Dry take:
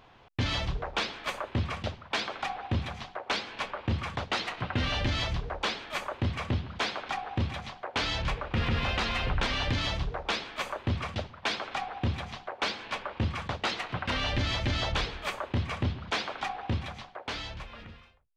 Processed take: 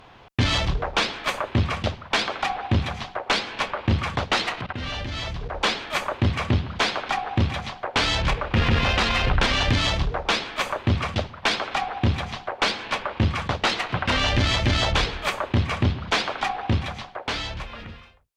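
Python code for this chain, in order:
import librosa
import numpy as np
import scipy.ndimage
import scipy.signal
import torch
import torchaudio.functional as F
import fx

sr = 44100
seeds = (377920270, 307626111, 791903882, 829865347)

y = fx.level_steps(x, sr, step_db=19, at=(4.61, 5.57))
y = fx.cheby_harmonics(y, sr, harmonics=(2,), levels_db=(-15,), full_scale_db=-20.0)
y = y * librosa.db_to_amplitude(8.0)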